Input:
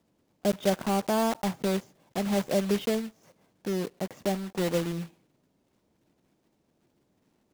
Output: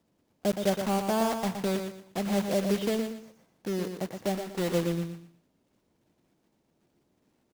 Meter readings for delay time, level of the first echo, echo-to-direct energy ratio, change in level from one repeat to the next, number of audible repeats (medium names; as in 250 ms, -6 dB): 118 ms, -7.0 dB, -6.5 dB, -11.0 dB, 3